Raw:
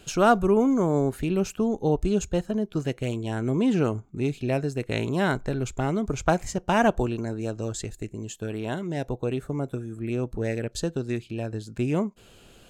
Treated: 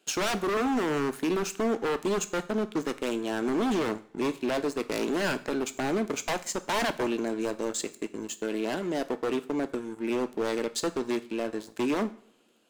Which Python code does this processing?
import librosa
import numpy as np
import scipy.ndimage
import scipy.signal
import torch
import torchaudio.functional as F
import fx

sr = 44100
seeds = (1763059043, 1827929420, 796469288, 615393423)

y = scipy.signal.sosfilt(scipy.signal.butter(4, 240.0, 'highpass', fs=sr, output='sos'), x)
y = fx.leveller(y, sr, passes=3)
y = 10.0 ** (-13.5 / 20.0) * (np.abs((y / 10.0 ** (-13.5 / 20.0) + 3.0) % 4.0 - 2.0) - 1.0)
y = fx.rev_double_slope(y, sr, seeds[0], early_s=0.45, late_s=2.0, knee_db=-25, drr_db=11.0)
y = y * librosa.db_to_amplitude(-8.5)